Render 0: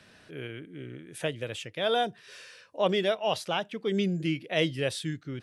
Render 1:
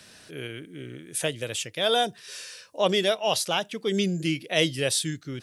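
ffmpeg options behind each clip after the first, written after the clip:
-af "bass=f=250:g=-1,treble=f=4000:g=13,volume=1.33"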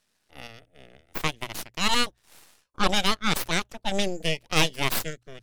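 -af "aeval=exprs='0.422*(cos(1*acos(clip(val(0)/0.422,-1,1)))-cos(1*PI/2))+0.15*(cos(3*acos(clip(val(0)/0.422,-1,1)))-cos(3*PI/2))+0.168*(cos(4*acos(clip(val(0)/0.422,-1,1)))-cos(4*PI/2))+0.0473*(cos(8*acos(clip(val(0)/0.422,-1,1)))-cos(8*PI/2))':c=same,bandreject=f=60:t=h:w=6,bandreject=f=120:t=h:w=6,volume=0.841"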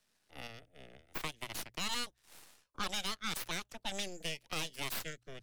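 -filter_complex "[0:a]acrossover=split=1200|4600[s0][s1][s2];[s0]acompressor=threshold=0.0141:ratio=4[s3];[s1]acompressor=threshold=0.0224:ratio=4[s4];[s2]acompressor=threshold=0.02:ratio=4[s5];[s3][s4][s5]amix=inputs=3:normalize=0,acrossover=split=140|1000[s6][s7][s8];[s8]asoftclip=type=tanh:threshold=0.0473[s9];[s6][s7][s9]amix=inputs=3:normalize=0,volume=0.631"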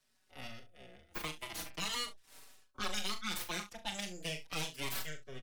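-filter_complex "[0:a]asplit=2[s0][s1];[s1]aecho=0:1:39|69:0.376|0.168[s2];[s0][s2]amix=inputs=2:normalize=0,asplit=2[s3][s4];[s4]adelay=4.8,afreqshift=-0.4[s5];[s3][s5]amix=inputs=2:normalize=1,volume=1.26"

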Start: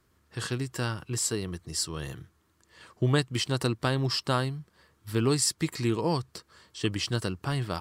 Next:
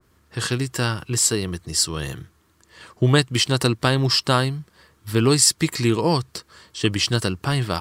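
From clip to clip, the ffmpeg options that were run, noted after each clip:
-af "adynamicequalizer=threshold=0.00891:dfrequency=1700:dqfactor=0.7:tfrequency=1700:tqfactor=0.7:attack=5:release=100:ratio=0.375:range=1.5:mode=boostabove:tftype=highshelf,volume=2.37"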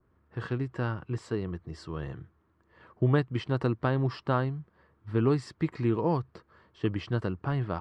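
-af "lowpass=1400,volume=0.447"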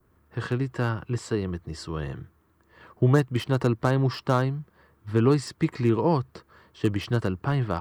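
-filter_complex "[0:a]aemphasis=mode=production:type=50kf,acrossover=split=390|1400[s0][s1][s2];[s2]aeval=exprs='0.02*(abs(mod(val(0)/0.02+3,4)-2)-1)':c=same[s3];[s0][s1][s3]amix=inputs=3:normalize=0,volume=1.68"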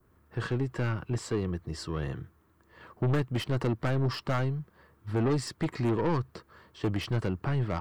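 -af "aeval=exprs='(tanh(14.1*val(0)+0.3)-tanh(0.3))/14.1':c=same"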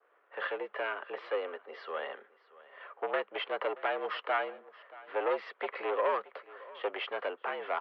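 -af "aeval=exprs='if(lt(val(0),0),0.708*val(0),val(0))':c=same,aecho=1:1:628:0.1,highpass=f=420:t=q:w=0.5412,highpass=f=420:t=q:w=1.307,lowpass=f=3100:t=q:w=0.5176,lowpass=f=3100:t=q:w=0.7071,lowpass=f=3100:t=q:w=1.932,afreqshift=77,volume=1.68"

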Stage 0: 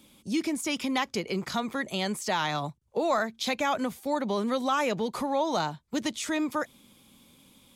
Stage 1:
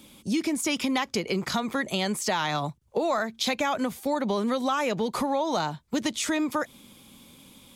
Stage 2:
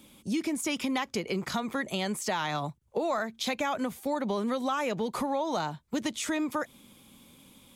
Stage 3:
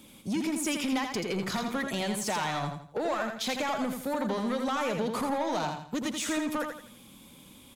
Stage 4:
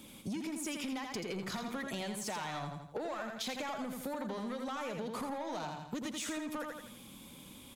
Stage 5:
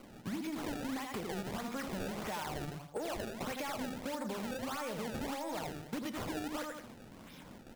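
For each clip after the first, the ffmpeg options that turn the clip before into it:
-af "acompressor=threshold=0.0316:ratio=3,volume=2"
-af "equalizer=f=4700:w=1.5:g=-3,volume=0.668"
-filter_complex "[0:a]asoftclip=type=tanh:threshold=0.0422,asplit=2[s0][s1];[s1]aecho=0:1:83|166|249|332:0.531|0.186|0.065|0.0228[s2];[s0][s2]amix=inputs=2:normalize=0,volume=1.26"
-af "acompressor=threshold=0.0141:ratio=6"
-af "acrusher=samples=24:mix=1:aa=0.000001:lfo=1:lforange=38.4:lforate=1.6,flanger=delay=6.2:depth=4.7:regen=-85:speed=0.55:shape=sinusoidal,volume=1.68"

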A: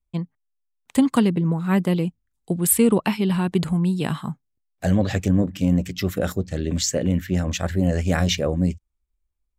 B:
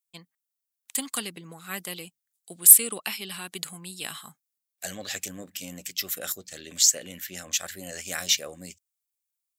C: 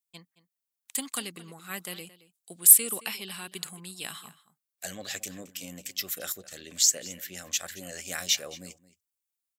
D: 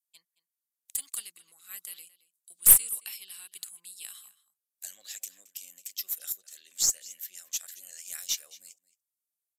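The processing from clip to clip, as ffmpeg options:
-af "aderivative,bandreject=f=950:w=8.1,acontrast=85"
-filter_complex "[0:a]asplit=2[s0][s1];[s1]adelay=221.6,volume=0.141,highshelf=f=4000:g=-4.99[s2];[s0][s2]amix=inputs=2:normalize=0,volume=0.75"
-af "aderivative,aresample=32000,aresample=44100,aeval=exprs='(tanh(2*val(0)+0.35)-tanh(0.35))/2':c=same,volume=0.891"

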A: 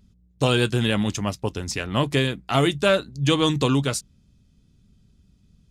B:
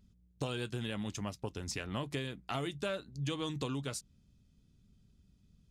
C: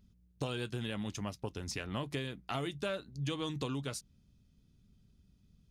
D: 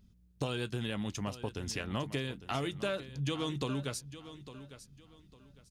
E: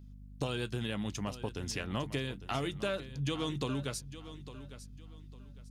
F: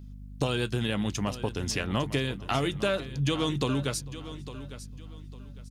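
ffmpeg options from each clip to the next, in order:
-af "acompressor=threshold=0.0447:ratio=4,volume=0.398"
-af "equalizer=f=7600:t=o:w=0.22:g=-5"
-af "aecho=1:1:854|1708|2562:0.2|0.0539|0.0145,volume=1.26"
-af "aeval=exprs='val(0)+0.00355*(sin(2*PI*50*n/s)+sin(2*PI*2*50*n/s)/2+sin(2*PI*3*50*n/s)/3+sin(2*PI*4*50*n/s)/4+sin(2*PI*5*50*n/s)/5)':c=same"
-filter_complex "[0:a]asplit=2[s0][s1];[s1]adelay=449,volume=0.0708,highshelf=f=4000:g=-10.1[s2];[s0][s2]amix=inputs=2:normalize=0,volume=2.24"

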